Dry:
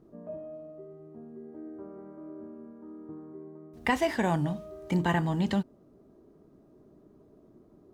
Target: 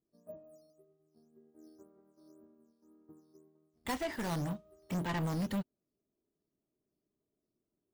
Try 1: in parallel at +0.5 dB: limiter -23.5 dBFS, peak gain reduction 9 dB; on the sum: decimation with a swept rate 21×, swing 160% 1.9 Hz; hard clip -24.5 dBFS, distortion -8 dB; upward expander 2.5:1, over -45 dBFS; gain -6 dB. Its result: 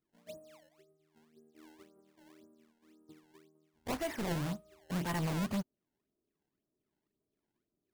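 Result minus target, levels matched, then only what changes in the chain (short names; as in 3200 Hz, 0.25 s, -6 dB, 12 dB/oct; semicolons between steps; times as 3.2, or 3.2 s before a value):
decimation with a swept rate: distortion +10 dB
change: decimation with a swept rate 5×, swing 160% 1.9 Hz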